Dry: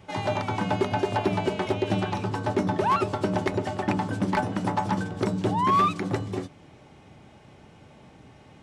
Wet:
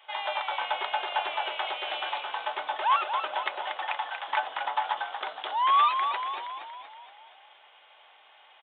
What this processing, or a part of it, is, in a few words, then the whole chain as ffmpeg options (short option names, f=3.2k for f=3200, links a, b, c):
musical greeting card: -filter_complex "[0:a]asettb=1/sr,asplit=3[a][b][c];[a]atrim=end=3.774[d];[b]atrim=start=3.77:end=4.28,asetpts=PTS-STARTPTS,afade=t=in:d=0.004:c=qsin,afade=t=out:st=0.506:d=0.004:c=qsin,highpass=f=670:w=0.5412,highpass=f=670:w=1.3066[e];[c]atrim=start=4.276[f];[d][e]acrossfade=d=0.004:c1=hsin:c2=qsin[g];[g][f]acrossfade=d=0.004:c1=qsin:c2=hsin,asplit=8[h][i][j][k][l][m][n][o];[i]adelay=235,afreqshift=-47,volume=-7dB[p];[j]adelay=470,afreqshift=-94,volume=-12dB[q];[k]adelay=705,afreqshift=-141,volume=-17.1dB[r];[l]adelay=940,afreqshift=-188,volume=-22.1dB[s];[m]adelay=1175,afreqshift=-235,volume=-27.1dB[t];[n]adelay=1410,afreqshift=-282,volume=-32.2dB[u];[o]adelay=1645,afreqshift=-329,volume=-37.2dB[v];[h][p][q][r][s][t][u][v]amix=inputs=8:normalize=0,aresample=8000,aresample=44100,highpass=f=750:w=0.5412,highpass=f=750:w=1.3066,equalizer=f=3.3k:t=o:w=0.43:g=8"